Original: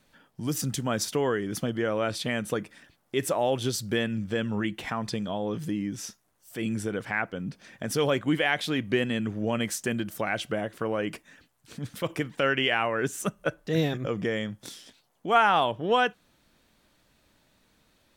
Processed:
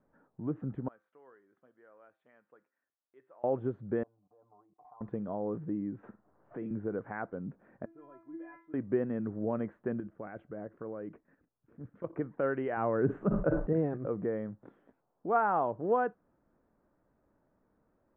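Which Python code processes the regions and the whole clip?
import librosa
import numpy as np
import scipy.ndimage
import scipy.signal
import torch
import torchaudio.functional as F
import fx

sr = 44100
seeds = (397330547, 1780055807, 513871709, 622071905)

y = fx.chain(x, sr, fx.differentiator(),
    fx.comb_fb(f0_hz=130.0, decay_s=0.41, harmonics='all', damping=0.0, mix_pct=50), at=(0.88, 3.44))
y = fx.chain(y, sr, fx.comb(ms=6.7, depth=0.98),
    fx.level_steps(step_db=19),
    fx.formant_cascade(vowel='a'), at=(4.03, 5.01))
y = fx.chain(y, sr, fx.room_flutter(wall_m=8.3, rt60_s=0.23),
    fx.band_squash(depth_pct=70), at=(6.03, 6.71))
y = fx.chain(y, sr, fx.cheby2_lowpass(hz=11000.0, order=4, stop_db=70),
    fx.stiff_resonator(f0_hz=330.0, decay_s=0.37, stiffness=0.002), at=(7.85, 8.74))
y = fx.chain(y, sr, fx.peak_eq(hz=830.0, db=-4.5, octaves=1.2),
    fx.level_steps(step_db=9), at=(10.0, 12.13))
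y = fx.chain(y, sr, fx.low_shelf(hz=320.0, db=9.0),
    fx.sustainer(db_per_s=42.0), at=(12.77, 13.73))
y = scipy.signal.sosfilt(scipy.signal.cheby2(4, 60, 4700.0, 'lowpass', fs=sr, output='sos'), y)
y = fx.peak_eq(y, sr, hz=400.0, db=5.5, octaves=1.9)
y = y * librosa.db_to_amplitude(-8.5)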